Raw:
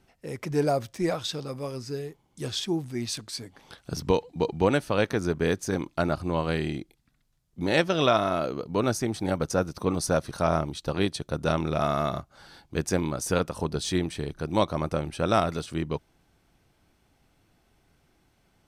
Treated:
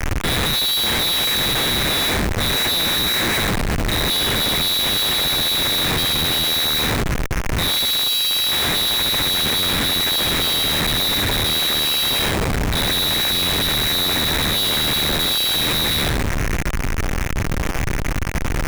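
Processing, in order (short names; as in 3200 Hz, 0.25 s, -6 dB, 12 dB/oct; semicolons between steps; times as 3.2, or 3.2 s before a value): half-wave gain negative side -12 dB; air absorption 360 m; on a send: flutter echo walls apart 11.4 m, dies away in 0.77 s; on the sum: band noise 1400–2300 Hz -40 dBFS; in parallel at +2 dB: compressor 5:1, threshold -38 dBFS, peak gain reduction 18.5 dB; on the sum: low shelf 190 Hz +5 dB; inverted band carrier 3900 Hz; Schmitt trigger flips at -27 dBFS; gain +3.5 dB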